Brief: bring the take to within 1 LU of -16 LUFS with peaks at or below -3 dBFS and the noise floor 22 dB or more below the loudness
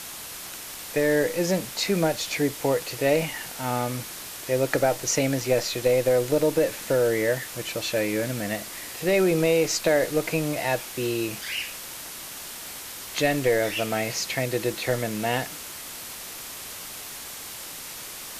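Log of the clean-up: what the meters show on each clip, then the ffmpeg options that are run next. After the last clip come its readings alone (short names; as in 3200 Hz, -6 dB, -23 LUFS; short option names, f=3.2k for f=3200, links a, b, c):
noise floor -38 dBFS; noise floor target -48 dBFS; loudness -26.0 LUFS; peak -9.0 dBFS; loudness target -16.0 LUFS
-> -af "afftdn=nr=10:nf=-38"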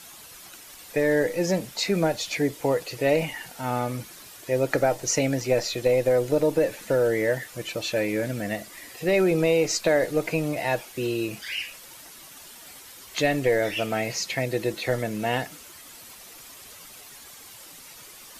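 noise floor -46 dBFS; noise floor target -48 dBFS
-> -af "afftdn=nr=6:nf=-46"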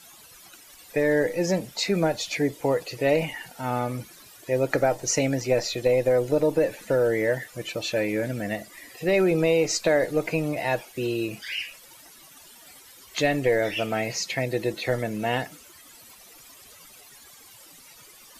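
noise floor -50 dBFS; loudness -25.5 LUFS; peak -9.5 dBFS; loudness target -16.0 LUFS
-> -af "volume=9.5dB,alimiter=limit=-3dB:level=0:latency=1"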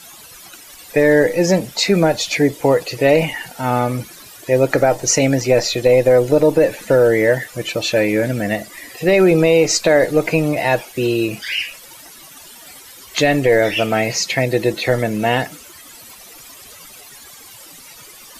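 loudness -16.0 LUFS; peak -3.0 dBFS; noise floor -41 dBFS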